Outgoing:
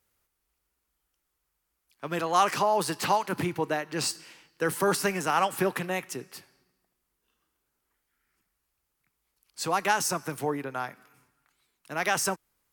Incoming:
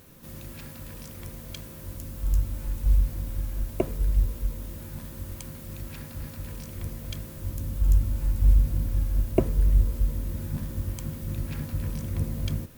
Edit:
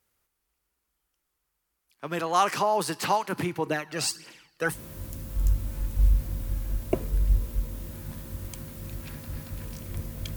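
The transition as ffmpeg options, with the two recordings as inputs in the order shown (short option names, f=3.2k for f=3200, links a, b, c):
-filter_complex "[0:a]asettb=1/sr,asplit=3[a][b][c];[a]atrim=end=3.664[d];[b]atrim=start=3.66:end=4.78,asetpts=PTS-STARTPTS,afade=t=in:d=0.004:c=qsin,afade=t=out:st=1.116:d=0.004:c=qsin,aphaser=in_gain=1:out_gain=1:delay=1.7:decay=0.55:speed=1.6:type=triangular[e];[c]atrim=start=4.776[f];[d][e]acrossfade=d=0.004:c1=hsin:c2=qsin[g];[g][f]acrossfade=d=0.004:c1=qsin:c2=hsin,apad=whole_dur=10.36,atrim=end=10.36,atrim=end=4.78,asetpts=PTS-STARTPTS[h];[1:a]atrim=start=1.57:end=7.23,asetpts=PTS-STARTPTS[i];[h][i]acrossfade=d=0.08:c1=tri:c2=tri"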